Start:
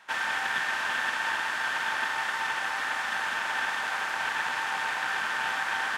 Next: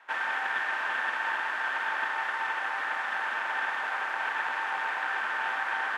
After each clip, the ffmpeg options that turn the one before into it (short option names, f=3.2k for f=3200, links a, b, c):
-filter_complex "[0:a]acrossover=split=260 2700:gain=0.0891 1 0.2[a][b][c];[a][b][c]amix=inputs=3:normalize=0"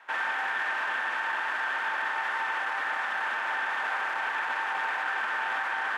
-af "alimiter=limit=-24dB:level=0:latency=1:release=16,volume=2.5dB"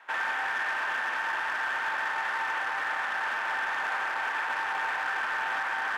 -af "asoftclip=type=hard:threshold=-24dB"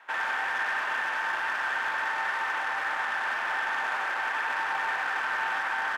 -af "aecho=1:1:97:0.473"